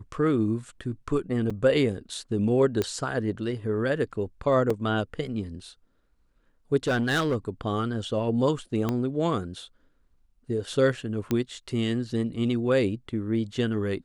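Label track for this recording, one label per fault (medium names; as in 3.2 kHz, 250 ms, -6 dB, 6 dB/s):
1.500000	1.500000	dropout 4.8 ms
2.820000	2.820000	pop -13 dBFS
4.700000	4.700000	dropout 4.5 ms
6.870000	7.360000	clipped -20.5 dBFS
8.890000	8.890000	pop -14 dBFS
11.310000	11.310000	pop -13 dBFS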